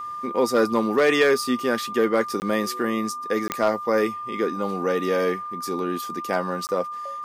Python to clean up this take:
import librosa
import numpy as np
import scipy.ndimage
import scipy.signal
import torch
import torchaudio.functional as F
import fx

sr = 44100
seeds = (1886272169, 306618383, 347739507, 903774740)

y = fx.fix_declip(x, sr, threshold_db=-10.5)
y = fx.fix_declick_ar(y, sr, threshold=10.0)
y = fx.notch(y, sr, hz=1200.0, q=30.0)
y = fx.fix_interpolate(y, sr, at_s=(2.4, 3.48, 6.67), length_ms=19.0)